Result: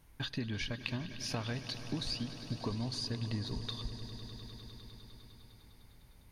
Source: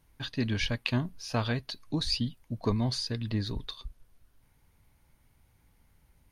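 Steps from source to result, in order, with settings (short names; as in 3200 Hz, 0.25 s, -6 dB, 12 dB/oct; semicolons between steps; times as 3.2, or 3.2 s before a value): compressor, threshold -38 dBFS, peak gain reduction 14.5 dB; on a send: swelling echo 0.101 s, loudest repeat 5, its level -16.5 dB; on the sum: gain +3 dB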